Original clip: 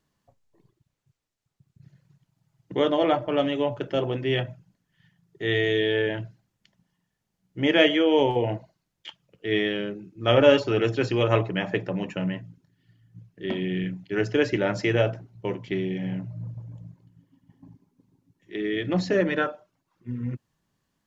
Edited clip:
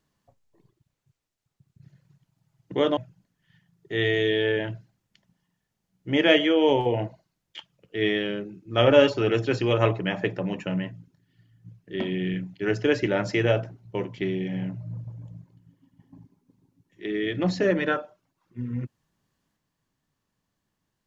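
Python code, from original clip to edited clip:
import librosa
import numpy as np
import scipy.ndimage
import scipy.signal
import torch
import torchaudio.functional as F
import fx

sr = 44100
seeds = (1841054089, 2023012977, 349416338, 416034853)

y = fx.edit(x, sr, fx.cut(start_s=2.97, length_s=1.5), tone=tone)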